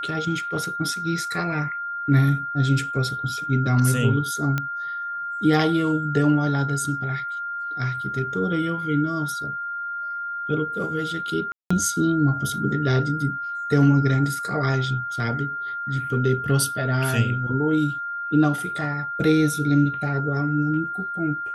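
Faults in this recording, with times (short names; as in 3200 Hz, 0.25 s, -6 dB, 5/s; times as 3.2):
tone 1400 Hz -27 dBFS
4.58 pop -11 dBFS
11.52–11.71 gap 0.185 s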